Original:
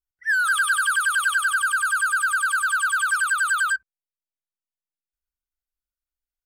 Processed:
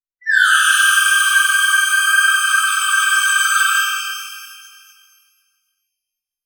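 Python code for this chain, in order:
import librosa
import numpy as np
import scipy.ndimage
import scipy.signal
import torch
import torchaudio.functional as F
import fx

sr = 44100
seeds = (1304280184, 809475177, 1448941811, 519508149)

y = fx.noise_reduce_blind(x, sr, reduce_db=21)
y = fx.rev_shimmer(y, sr, seeds[0], rt60_s=1.8, semitones=12, shimmer_db=-8, drr_db=-7.0)
y = F.gain(torch.from_numpy(y), 1.5).numpy()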